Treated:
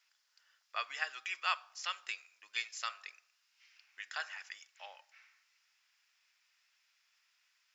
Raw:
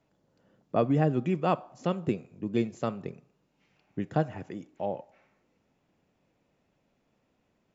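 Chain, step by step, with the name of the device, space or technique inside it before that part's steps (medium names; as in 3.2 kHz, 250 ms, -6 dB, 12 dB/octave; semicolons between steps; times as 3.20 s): headphones lying on a table (high-pass 1.5 kHz 24 dB/octave; peaking EQ 5.1 kHz +9 dB 0.39 oct); 2.72–4.31 s: de-hum 98.46 Hz, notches 19; trim +6.5 dB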